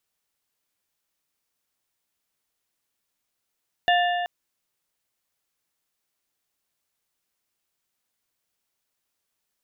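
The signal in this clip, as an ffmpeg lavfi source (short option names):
-f lavfi -i "aevalsrc='0.141*pow(10,-3*t/2.42)*sin(2*PI*706*t)+0.0891*pow(10,-3*t/1.838)*sin(2*PI*1765*t)+0.0562*pow(10,-3*t/1.597)*sin(2*PI*2824*t)+0.0355*pow(10,-3*t/1.493)*sin(2*PI*3530*t)':d=0.38:s=44100"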